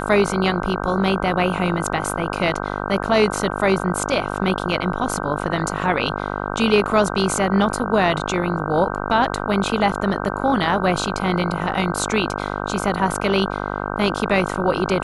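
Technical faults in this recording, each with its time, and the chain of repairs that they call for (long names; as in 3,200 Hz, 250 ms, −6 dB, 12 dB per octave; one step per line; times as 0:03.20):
mains buzz 50 Hz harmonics 31 −26 dBFS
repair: hum removal 50 Hz, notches 31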